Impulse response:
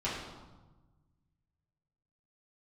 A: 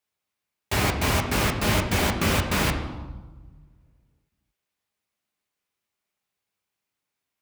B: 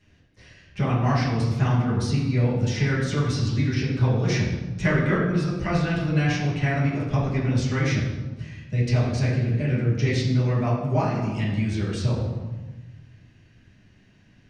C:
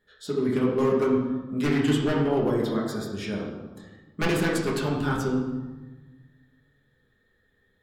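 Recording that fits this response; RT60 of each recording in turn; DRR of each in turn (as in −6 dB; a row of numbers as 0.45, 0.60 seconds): B; 1.2, 1.2, 1.2 seconds; 2.5, −9.5, −4.5 decibels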